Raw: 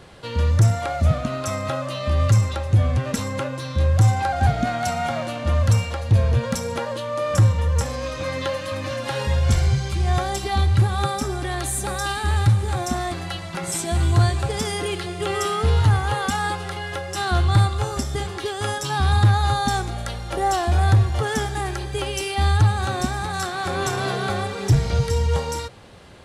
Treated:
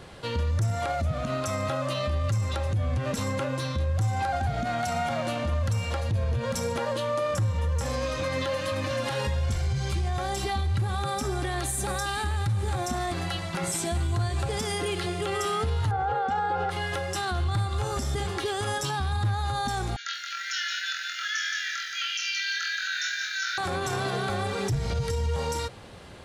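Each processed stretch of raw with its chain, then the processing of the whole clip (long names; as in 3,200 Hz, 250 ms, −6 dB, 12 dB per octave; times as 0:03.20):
0:15.91–0:16.70: low-pass filter 5,600 Hz + high-shelf EQ 4,400 Hz −11.5 dB + hollow resonant body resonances 490/780/1,400 Hz, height 18 dB, ringing for 60 ms
0:19.96–0:23.58: linear-phase brick-wall band-pass 1,300–7,000 Hz + flutter between parallel walls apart 4 metres, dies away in 0.4 s + feedback echo at a low word length 174 ms, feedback 55%, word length 9 bits, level −6 dB
whole clip: downward compressor, threshold −20 dBFS; brickwall limiter −20 dBFS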